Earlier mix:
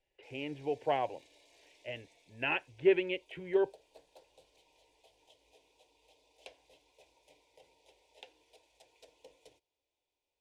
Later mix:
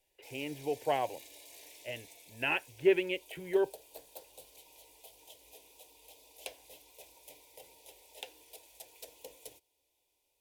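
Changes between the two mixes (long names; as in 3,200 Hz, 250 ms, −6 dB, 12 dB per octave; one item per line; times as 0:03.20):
background +6.0 dB
master: remove high-frequency loss of the air 99 metres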